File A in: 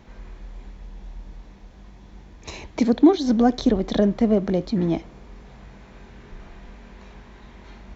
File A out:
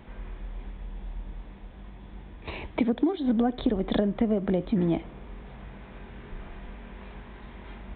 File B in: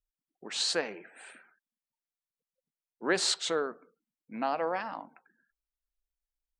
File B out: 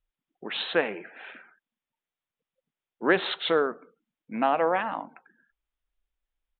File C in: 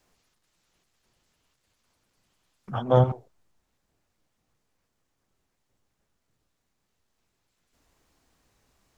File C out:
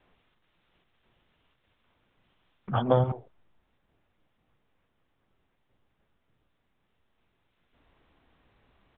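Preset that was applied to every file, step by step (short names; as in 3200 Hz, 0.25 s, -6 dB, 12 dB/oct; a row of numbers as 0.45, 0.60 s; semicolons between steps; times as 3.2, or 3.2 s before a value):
compressor 16:1, threshold -21 dBFS; downsampling 8000 Hz; match loudness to -27 LUFS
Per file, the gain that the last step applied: +1.0, +7.0, +3.5 dB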